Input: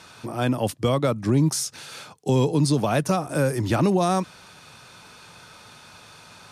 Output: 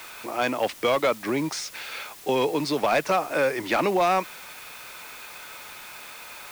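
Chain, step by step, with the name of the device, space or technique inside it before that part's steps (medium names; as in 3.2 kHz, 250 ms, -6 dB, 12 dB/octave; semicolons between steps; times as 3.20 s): drive-through speaker (band-pass 460–3900 Hz; peaking EQ 2.2 kHz +8 dB 0.49 oct; hard clipper -19 dBFS, distortion -17 dB; white noise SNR 19 dB); trim +3.5 dB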